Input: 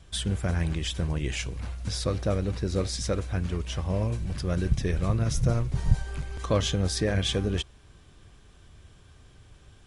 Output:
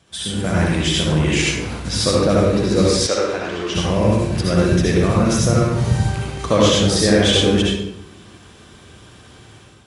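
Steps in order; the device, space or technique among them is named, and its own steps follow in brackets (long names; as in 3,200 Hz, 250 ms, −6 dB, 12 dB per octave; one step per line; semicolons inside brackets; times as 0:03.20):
far laptop microphone (convolution reverb RT60 0.80 s, pre-delay 58 ms, DRR −4 dB; high-pass filter 150 Hz 12 dB per octave; automatic gain control gain up to 8.5 dB)
0:03.07–0:03.75: three-way crossover with the lows and the highs turned down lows −17 dB, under 330 Hz, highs −21 dB, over 7,200 Hz
level +1.5 dB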